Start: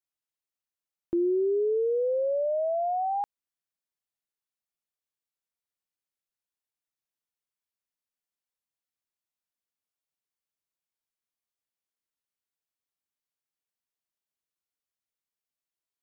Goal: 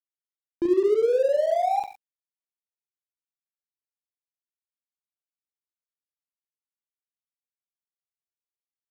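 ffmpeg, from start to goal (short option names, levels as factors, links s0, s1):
-af "areverse,acompressor=mode=upward:threshold=0.00562:ratio=2.5,areverse,aecho=1:1:50|115|199.5|309.4|452.2:0.631|0.398|0.251|0.158|0.1,atempo=1.8,aeval=exprs='sgn(val(0))*max(abs(val(0))-0.0075,0)':c=same,volume=1.5"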